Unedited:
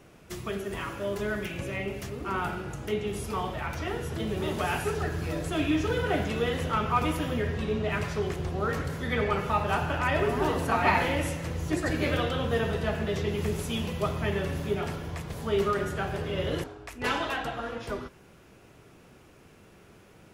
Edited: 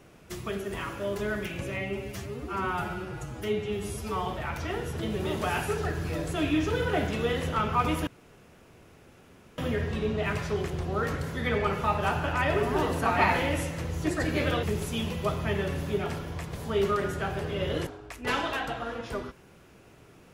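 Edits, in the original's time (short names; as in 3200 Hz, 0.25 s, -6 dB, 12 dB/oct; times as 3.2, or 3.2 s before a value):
1.77–3.43 stretch 1.5×
7.24 insert room tone 1.51 s
12.29–13.4 cut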